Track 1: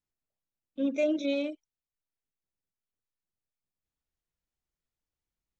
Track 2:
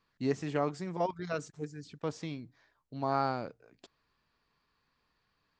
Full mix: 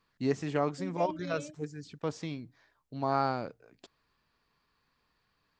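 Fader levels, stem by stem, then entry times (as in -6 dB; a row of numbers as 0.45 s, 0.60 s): -12.5 dB, +1.5 dB; 0.00 s, 0.00 s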